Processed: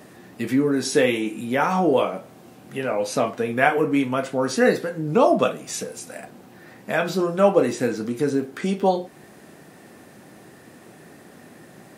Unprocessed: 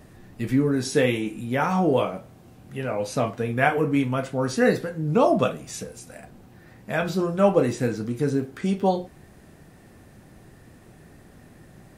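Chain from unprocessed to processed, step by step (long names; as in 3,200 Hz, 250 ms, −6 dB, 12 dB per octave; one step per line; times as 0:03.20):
high-pass filter 220 Hz 12 dB per octave
in parallel at −2 dB: downward compressor, threshold −33 dBFS, peak gain reduction 18 dB
on the sum: level +1.5 dB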